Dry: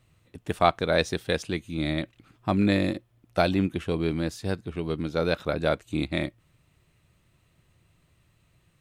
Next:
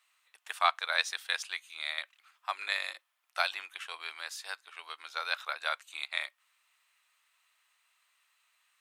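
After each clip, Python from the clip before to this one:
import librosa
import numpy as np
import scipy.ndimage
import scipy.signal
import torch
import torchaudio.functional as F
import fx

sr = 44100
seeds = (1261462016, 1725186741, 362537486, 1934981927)

y = scipy.signal.sosfilt(scipy.signal.cheby2(4, 70, 220.0, 'highpass', fs=sr, output='sos'), x)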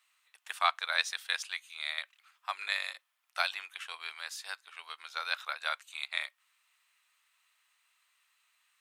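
y = fx.low_shelf(x, sr, hz=420.0, db=-11.5)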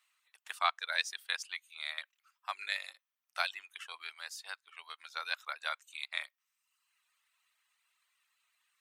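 y = fx.dereverb_blind(x, sr, rt60_s=0.9)
y = y * librosa.db_to_amplitude(-2.5)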